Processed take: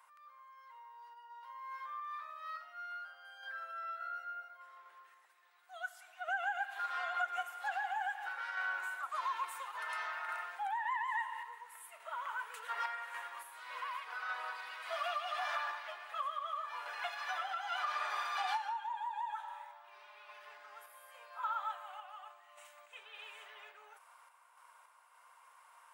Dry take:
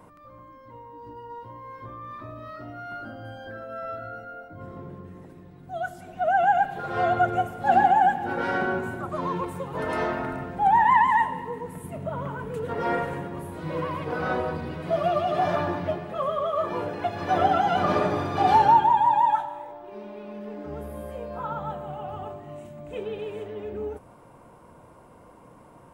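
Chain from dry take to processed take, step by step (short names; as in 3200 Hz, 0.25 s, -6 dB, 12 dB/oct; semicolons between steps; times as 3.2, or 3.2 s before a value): HPF 1100 Hz 24 dB/oct; compressor 6:1, threshold -33 dBFS, peak gain reduction 13 dB; random-step tremolo 3.5 Hz, depth 55%; gain +1 dB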